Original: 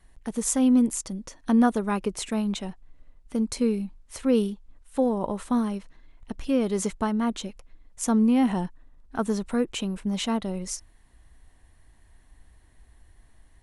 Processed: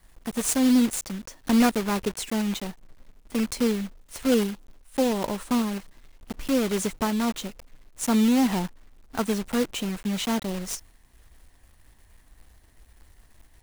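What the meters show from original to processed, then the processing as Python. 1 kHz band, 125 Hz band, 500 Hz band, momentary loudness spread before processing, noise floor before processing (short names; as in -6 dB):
+0.5 dB, 0.0 dB, 0.0 dB, 15 LU, -57 dBFS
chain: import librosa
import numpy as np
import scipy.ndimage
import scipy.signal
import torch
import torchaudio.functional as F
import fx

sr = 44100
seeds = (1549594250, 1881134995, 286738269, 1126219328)

y = fx.block_float(x, sr, bits=3)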